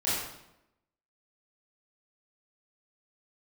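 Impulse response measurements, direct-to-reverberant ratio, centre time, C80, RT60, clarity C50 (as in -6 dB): -11.0 dB, 75 ms, 2.5 dB, 0.85 s, -1.0 dB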